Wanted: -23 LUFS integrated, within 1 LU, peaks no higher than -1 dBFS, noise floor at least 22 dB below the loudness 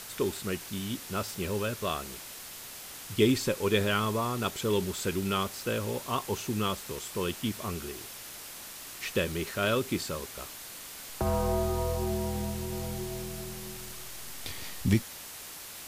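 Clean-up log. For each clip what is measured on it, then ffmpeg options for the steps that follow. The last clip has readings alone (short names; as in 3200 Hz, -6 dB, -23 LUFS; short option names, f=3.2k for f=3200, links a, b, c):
noise floor -44 dBFS; noise floor target -55 dBFS; loudness -32.5 LUFS; peak -11.5 dBFS; loudness target -23.0 LUFS
-> -af "afftdn=nr=11:nf=-44"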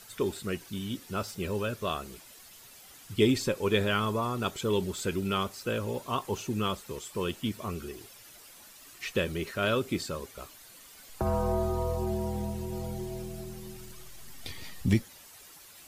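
noise floor -52 dBFS; noise floor target -54 dBFS
-> -af "afftdn=nr=6:nf=-52"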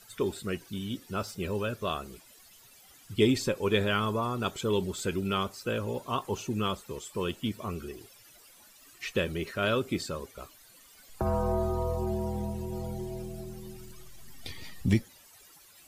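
noise floor -56 dBFS; loudness -31.5 LUFS; peak -11.5 dBFS; loudness target -23.0 LUFS
-> -af "volume=8.5dB"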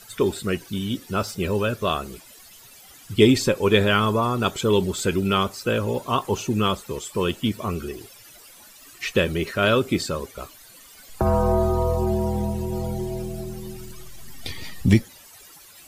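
loudness -23.0 LUFS; peak -3.0 dBFS; noise floor -48 dBFS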